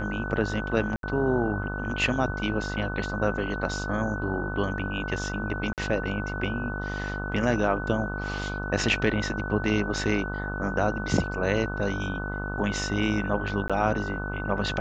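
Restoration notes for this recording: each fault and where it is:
buzz 50 Hz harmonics 28 -33 dBFS
tone 1500 Hz -34 dBFS
0.96–1.03 gap 72 ms
5.73–5.78 gap 48 ms
13.68–13.7 gap 16 ms

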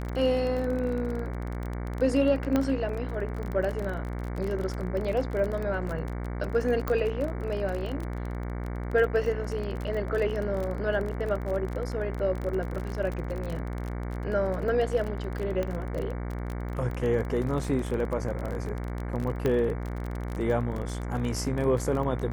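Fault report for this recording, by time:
buzz 60 Hz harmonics 38 -33 dBFS
crackle 28/s -31 dBFS
2.56 pop -13 dBFS
6.88 pop -16 dBFS
15.63 pop -18 dBFS
19.46 pop -15 dBFS

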